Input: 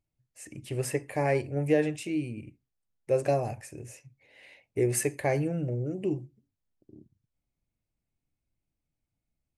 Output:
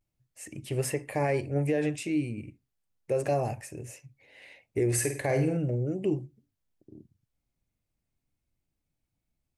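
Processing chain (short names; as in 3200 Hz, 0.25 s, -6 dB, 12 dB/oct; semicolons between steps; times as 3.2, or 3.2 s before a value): limiter -20.5 dBFS, peak gain reduction 8 dB; vibrato 0.35 Hz 31 cents; 4.88–5.57 flutter echo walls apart 8.7 m, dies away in 0.44 s; gain +2 dB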